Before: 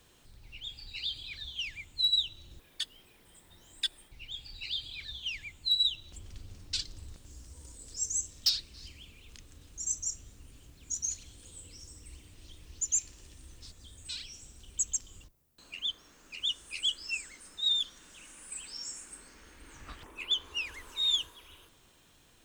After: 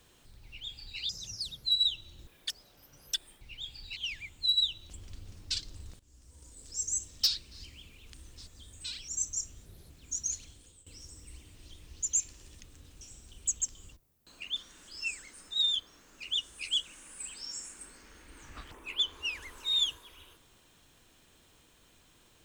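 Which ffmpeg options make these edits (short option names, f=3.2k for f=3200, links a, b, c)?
-filter_complex "[0:a]asplit=18[a][b][c][d][e][f][g][h][i][j][k][l][m][n][o][p][q][r];[a]atrim=end=1.094[s];[b]atrim=start=1.09:end=1.97,asetpts=PTS-STARTPTS,asetrate=69678,aresample=44100,atrim=end_sample=24562,asetpts=PTS-STARTPTS[t];[c]atrim=start=1.966:end=2.824[u];[d]atrim=start=2.82:end=3.85,asetpts=PTS-STARTPTS,asetrate=70119,aresample=44100[v];[e]atrim=start=3.846:end=4.672[w];[f]atrim=start=5.188:end=7.22,asetpts=PTS-STARTPTS,afade=t=out:st=2.028:d=0.004:c=hsin:silence=0.133352[x];[g]atrim=start=7.22:end=9.362,asetpts=PTS-STARTPTS,afade=t=in:d=1.17:c=qsin:silence=0.133352[y];[h]atrim=start=13.378:end=14.332[z];[i]atrim=start=9.778:end=10.354[aa];[j]atrim=start=10.35:end=10.69,asetpts=PTS-STARTPTS,asetrate=60417,aresample=44100[ab];[k]atrim=start=10.686:end=11.65,asetpts=PTS-STARTPTS,afade=t=out:st=0.524:d=0.44:silence=0.16788[ac];[l]atrim=start=11.65:end=13.382,asetpts=PTS-STARTPTS,afade=t=in:d=0.004:c=hsin:silence=0.16788[ad];[m]atrim=start=9.358:end=9.782[ae];[n]atrim=start=14.328:end=15.882[af];[o]atrim=start=17.828:end=18.152[ag];[p]atrim=start=16.948:end=17.832[ah];[q]atrim=start=15.878:end=16.952[ai];[r]atrim=start=18.148[aj];[s][t]acrossfade=d=0.004:c1=hsin:c2=hsin[ak];[ak][u]acrossfade=d=0.004:c1=hsin:c2=hsin[al];[al][v]acrossfade=d=0.004:c1=hsin:c2=hsin[am];[am][w]acrossfade=d=0.004:c1=hsin:c2=hsin[an];[x][y]concat=n=2:v=0:a=1[ao];[an][ao]acrossfade=d=0.004:c1=hsin:c2=hsin[ap];[ap][z]acrossfade=d=0.004:c1=hsin:c2=hsin[aq];[aq][aa]acrossfade=d=0.004:c1=hsin:c2=hsin[ar];[ar][ab]acrossfade=d=0.004:c1=hsin:c2=hsin[as];[ac][ad]concat=n=2:v=0:a=1[at];[as][at]acrossfade=d=0.004:c1=hsin:c2=hsin[au];[au][ae]acrossfade=d=0.004:c1=hsin:c2=hsin[av];[av][af]acrossfade=d=0.004:c1=hsin:c2=hsin[aw];[aw][ag]acrossfade=d=0.004:c1=hsin:c2=hsin[ax];[ax][ah]acrossfade=d=0.004:c1=hsin:c2=hsin[ay];[ay][ai]acrossfade=d=0.004:c1=hsin:c2=hsin[az];[az][aj]acrossfade=d=0.004:c1=hsin:c2=hsin"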